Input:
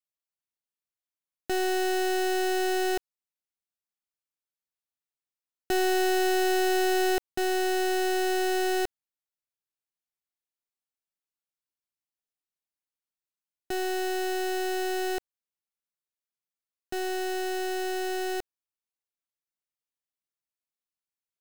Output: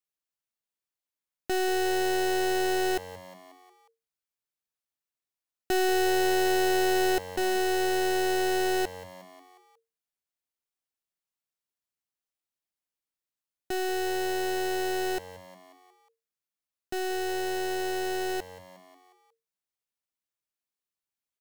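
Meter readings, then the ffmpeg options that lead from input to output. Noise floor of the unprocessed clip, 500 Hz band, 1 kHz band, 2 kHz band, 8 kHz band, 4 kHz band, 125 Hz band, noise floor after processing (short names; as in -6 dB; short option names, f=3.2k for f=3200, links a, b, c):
under -85 dBFS, 0.0 dB, 0.0 dB, 0.0 dB, 0.0 dB, 0.0 dB, n/a, under -85 dBFS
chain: -filter_complex "[0:a]asplit=6[a][b][c][d][e][f];[b]adelay=180,afreqshift=91,volume=-17.5dB[g];[c]adelay=360,afreqshift=182,volume=-22.2dB[h];[d]adelay=540,afreqshift=273,volume=-27dB[i];[e]adelay=720,afreqshift=364,volume=-31.7dB[j];[f]adelay=900,afreqshift=455,volume=-36.4dB[k];[a][g][h][i][j][k]amix=inputs=6:normalize=0"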